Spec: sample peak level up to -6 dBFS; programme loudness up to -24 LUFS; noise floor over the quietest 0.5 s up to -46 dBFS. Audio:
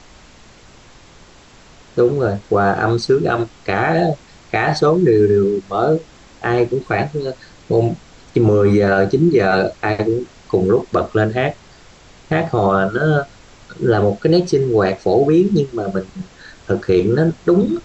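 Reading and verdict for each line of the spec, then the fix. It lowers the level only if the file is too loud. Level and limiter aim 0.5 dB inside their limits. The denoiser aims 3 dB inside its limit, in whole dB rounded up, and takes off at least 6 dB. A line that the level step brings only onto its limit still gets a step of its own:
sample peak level -4.5 dBFS: fail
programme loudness -17.0 LUFS: fail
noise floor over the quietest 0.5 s -44 dBFS: fail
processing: gain -7.5 dB

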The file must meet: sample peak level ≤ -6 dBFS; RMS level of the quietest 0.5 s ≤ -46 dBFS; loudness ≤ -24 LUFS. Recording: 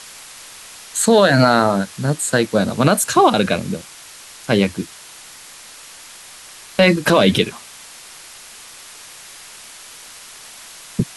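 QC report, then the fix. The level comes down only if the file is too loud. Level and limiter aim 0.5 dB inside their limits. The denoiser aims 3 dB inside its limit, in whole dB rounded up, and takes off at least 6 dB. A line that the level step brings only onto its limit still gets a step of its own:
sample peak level -3.0 dBFS: fail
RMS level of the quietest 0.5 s -40 dBFS: fail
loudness -16.5 LUFS: fail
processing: gain -8 dB

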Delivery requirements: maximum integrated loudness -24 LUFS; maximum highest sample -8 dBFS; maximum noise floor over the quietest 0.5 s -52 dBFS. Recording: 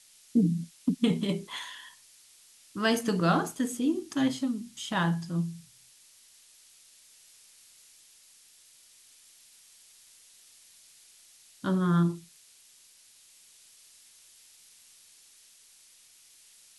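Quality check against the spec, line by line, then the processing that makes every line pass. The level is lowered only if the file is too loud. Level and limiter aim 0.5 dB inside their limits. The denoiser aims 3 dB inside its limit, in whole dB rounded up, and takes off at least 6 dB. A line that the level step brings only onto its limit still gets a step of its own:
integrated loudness -29.0 LUFS: OK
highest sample -12.5 dBFS: OK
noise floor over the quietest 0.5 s -58 dBFS: OK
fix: none

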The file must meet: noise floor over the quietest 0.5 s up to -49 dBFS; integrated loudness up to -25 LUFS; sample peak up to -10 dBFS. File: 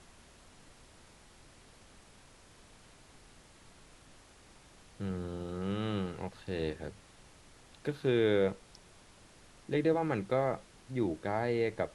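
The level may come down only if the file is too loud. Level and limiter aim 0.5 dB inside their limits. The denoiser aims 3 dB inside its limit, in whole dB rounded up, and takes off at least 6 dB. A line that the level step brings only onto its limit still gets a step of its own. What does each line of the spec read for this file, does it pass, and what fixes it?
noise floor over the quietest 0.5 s -58 dBFS: OK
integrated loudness -34.0 LUFS: OK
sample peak -17.0 dBFS: OK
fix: none

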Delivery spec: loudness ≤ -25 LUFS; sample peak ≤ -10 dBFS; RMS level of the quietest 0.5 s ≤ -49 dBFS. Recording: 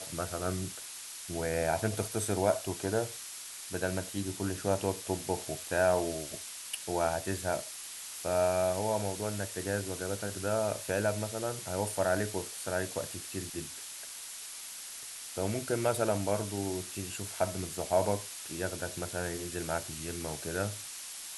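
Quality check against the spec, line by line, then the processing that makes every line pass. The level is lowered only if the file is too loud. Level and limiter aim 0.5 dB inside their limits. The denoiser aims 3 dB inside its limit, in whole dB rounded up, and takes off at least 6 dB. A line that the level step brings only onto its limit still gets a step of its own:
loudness -33.5 LUFS: OK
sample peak -14.5 dBFS: OK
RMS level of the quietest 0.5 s -44 dBFS: fail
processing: denoiser 8 dB, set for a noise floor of -44 dBFS

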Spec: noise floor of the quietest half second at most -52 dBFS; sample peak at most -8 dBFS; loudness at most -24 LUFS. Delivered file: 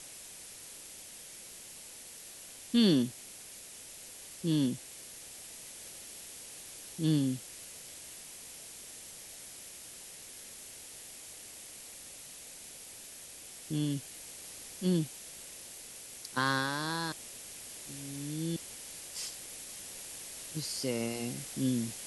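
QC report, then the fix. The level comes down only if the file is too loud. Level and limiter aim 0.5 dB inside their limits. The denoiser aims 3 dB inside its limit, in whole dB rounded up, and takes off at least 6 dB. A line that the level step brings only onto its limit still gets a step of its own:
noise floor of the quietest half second -49 dBFS: fail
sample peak -15.0 dBFS: OK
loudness -37.5 LUFS: OK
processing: denoiser 6 dB, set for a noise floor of -49 dBFS

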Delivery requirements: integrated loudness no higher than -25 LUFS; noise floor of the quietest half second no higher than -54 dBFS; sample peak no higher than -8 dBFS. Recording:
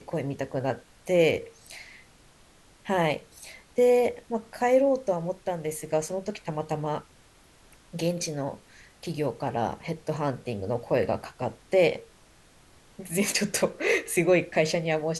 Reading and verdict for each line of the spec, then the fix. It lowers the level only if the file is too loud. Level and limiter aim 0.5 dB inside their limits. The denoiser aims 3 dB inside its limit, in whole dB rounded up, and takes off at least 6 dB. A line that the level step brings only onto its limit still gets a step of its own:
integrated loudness -27.5 LUFS: OK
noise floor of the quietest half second -57 dBFS: OK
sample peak -9.5 dBFS: OK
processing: none

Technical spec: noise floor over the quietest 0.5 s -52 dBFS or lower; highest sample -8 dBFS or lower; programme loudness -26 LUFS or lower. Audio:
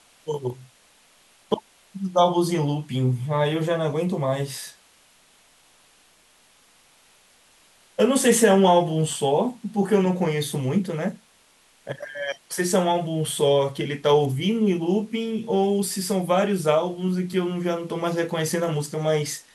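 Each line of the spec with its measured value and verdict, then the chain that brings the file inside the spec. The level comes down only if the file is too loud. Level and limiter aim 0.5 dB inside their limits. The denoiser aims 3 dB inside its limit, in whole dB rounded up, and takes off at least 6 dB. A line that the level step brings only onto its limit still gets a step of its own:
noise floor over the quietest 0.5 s -58 dBFS: OK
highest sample -5.0 dBFS: fail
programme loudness -23.0 LUFS: fail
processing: gain -3.5 dB

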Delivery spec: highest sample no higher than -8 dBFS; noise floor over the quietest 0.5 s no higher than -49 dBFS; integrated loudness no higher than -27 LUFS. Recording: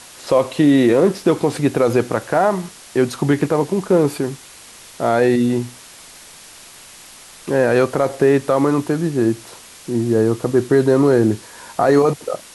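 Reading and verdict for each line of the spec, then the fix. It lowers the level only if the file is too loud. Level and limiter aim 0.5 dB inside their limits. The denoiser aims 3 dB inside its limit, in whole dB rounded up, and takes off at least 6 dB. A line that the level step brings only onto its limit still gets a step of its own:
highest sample -5.0 dBFS: fail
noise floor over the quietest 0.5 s -41 dBFS: fail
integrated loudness -17.5 LUFS: fail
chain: gain -10 dB

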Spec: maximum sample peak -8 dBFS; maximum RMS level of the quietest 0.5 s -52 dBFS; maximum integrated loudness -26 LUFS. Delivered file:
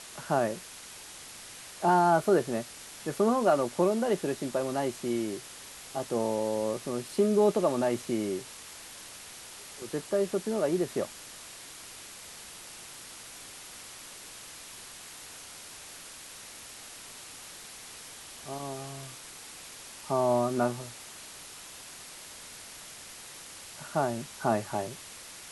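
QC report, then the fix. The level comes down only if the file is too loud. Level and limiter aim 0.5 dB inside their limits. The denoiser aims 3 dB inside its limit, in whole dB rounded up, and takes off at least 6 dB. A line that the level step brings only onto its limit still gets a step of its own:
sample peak -12.0 dBFS: OK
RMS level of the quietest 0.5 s -46 dBFS: fail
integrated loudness -29.5 LUFS: OK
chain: denoiser 9 dB, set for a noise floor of -46 dBFS

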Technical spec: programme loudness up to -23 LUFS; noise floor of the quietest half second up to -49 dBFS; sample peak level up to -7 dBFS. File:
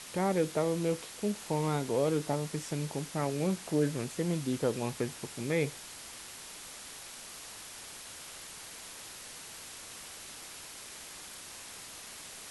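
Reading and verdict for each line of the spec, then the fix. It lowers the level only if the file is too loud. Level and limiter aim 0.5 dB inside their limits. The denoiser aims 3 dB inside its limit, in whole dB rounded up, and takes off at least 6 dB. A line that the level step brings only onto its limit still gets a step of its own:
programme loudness -35.5 LUFS: OK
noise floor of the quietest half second -47 dBFS: fail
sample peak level -17.0 dBFS: OK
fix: denoiser 6 dB, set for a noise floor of -47 dBFS

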